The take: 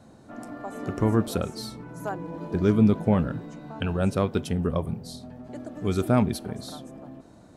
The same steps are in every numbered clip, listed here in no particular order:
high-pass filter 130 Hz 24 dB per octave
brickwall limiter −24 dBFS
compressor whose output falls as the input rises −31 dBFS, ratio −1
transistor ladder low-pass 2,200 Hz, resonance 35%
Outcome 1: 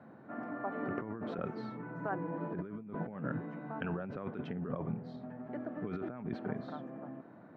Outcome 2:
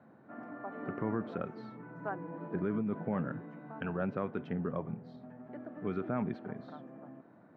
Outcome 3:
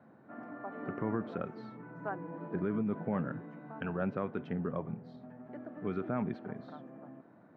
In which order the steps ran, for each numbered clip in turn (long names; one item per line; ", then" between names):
high-pass filter, then compressor whose output falls as the input rises, then transistor ladder low-pass, then brickwall limiter
transistor ladder low-pass, then brickwall limiter, then compressor whose output falls as the input rises, then high-pass filter
transistor ladder low-pass, then brickwall limiter, then high-pass filter, then compressor whose output falls as the input rises